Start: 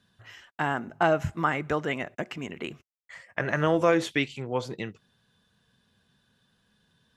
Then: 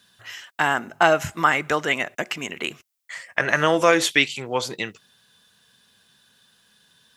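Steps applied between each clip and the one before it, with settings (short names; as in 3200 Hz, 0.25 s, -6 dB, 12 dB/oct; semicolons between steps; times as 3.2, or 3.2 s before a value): tilt +3 dB/oct; gain +7 dB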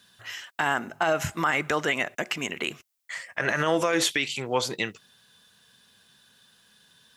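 limiter -13 dBFS, peak gain reduction 11.5 dB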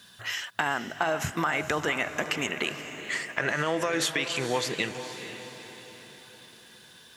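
compressor 3:1, threshold -33 dBFS, peak gain reduction 11 dB; diffused feedback echo 0.467 s, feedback 50%, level -10 dB; gain +6 dB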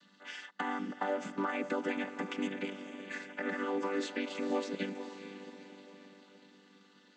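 chord vocoder major triad, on G3; gain -6 dB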